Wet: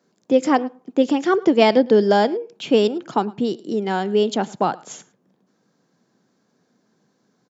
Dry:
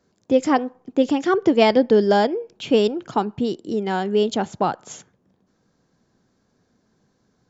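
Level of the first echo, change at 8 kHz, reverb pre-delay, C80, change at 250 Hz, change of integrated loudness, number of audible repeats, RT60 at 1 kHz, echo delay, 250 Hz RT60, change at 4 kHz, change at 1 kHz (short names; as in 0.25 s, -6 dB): -23.0 dB, n/a, none, none, +1.0 dB, +1.0 dB, 1, none, 0.108 s, none, +1.0 dB, +1.0 dB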